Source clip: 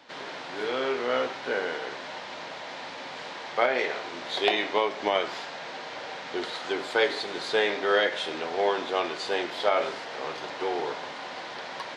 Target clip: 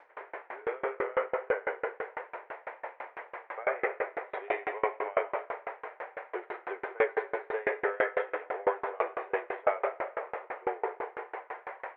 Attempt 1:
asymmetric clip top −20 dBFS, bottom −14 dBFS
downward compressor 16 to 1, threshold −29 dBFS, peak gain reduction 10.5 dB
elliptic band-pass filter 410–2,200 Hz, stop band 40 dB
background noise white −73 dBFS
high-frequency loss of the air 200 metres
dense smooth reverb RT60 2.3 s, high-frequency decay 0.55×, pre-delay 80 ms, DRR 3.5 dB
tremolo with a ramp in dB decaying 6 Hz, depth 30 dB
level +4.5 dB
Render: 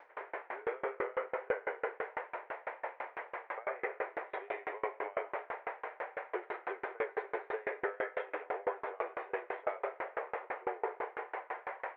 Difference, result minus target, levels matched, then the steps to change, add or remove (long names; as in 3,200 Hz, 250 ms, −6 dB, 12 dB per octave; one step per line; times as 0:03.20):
downward compressor: peak gain reduction +10.5 dB
remove: downward compressor 16 to 1, threshold −29 dBFS, peak gain reduction 10.5 dB